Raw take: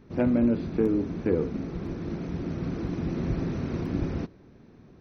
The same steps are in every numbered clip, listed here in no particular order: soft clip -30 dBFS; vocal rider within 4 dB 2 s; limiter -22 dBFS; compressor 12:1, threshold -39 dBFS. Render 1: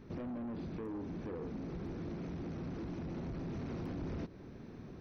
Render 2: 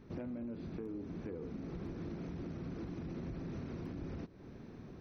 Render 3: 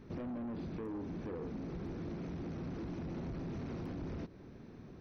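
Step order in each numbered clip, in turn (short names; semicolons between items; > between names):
limiter > soft clip > compressor > vocal rider; vocal rider > limiter > compressor > soft clip; limiter > soft clip > vocal rider > compressor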